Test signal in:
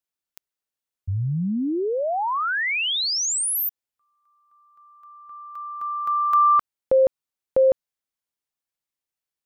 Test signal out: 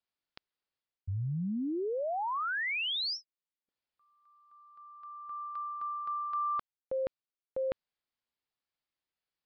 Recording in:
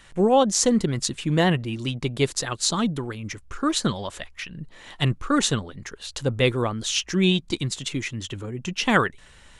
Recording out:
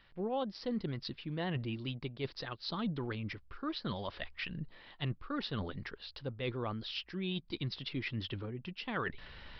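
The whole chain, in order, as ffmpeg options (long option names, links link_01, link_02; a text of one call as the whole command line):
ffmpeg -i in.wav -af "areverse,acompressor=threshold=-32dB:ratio=6:attack=1.9:release=992:knee=1:detection=peak,areverse,aresample=11025,aresample=44100" out.wav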